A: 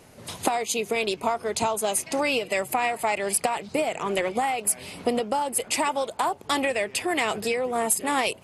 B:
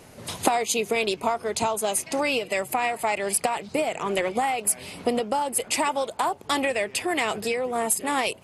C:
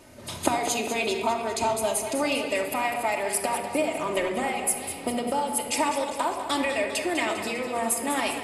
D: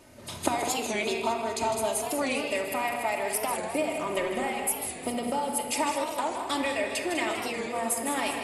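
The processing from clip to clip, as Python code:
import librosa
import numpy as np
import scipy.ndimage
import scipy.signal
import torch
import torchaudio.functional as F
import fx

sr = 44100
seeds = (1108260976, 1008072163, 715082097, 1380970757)

y1 = fx.rider(x, sr, range_db=5, speed_s=2.0)
y2 = fx.echo_feedback(y1, sr, ms=200, feedback_pct=59, wet_db=-10.0)
y2 = fx.room_shoebox(y2, sr, seeds[0], volume_m3=3800.0, walls='furnished', distance_m=2.7)
y2 = y2 * librosa.db_to_amplitude(-4.0)
y3 = y2 + 10.0 ** (-8.5 / 20.0) * np.pad(y2, (int(155 * sr / 1000.0), 0))[:len(y2)]
y3 = fx.record_warp(y3, sr, rpm=45.0, depth_cents=160.0)
y3 = y3 * librosa.db_to_amplitude(-3.0)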